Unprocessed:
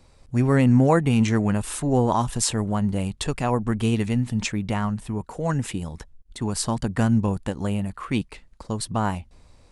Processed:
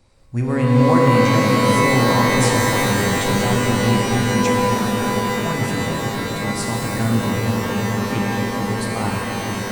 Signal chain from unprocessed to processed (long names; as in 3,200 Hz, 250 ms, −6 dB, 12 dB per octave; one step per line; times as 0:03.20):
bucket-brigade delay 441 ms, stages 2,048, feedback 77%, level −5 dB
reverb with rising layers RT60 3.8 s, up +12 semitones, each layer −2 dB, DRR −1 dB
level −3 dB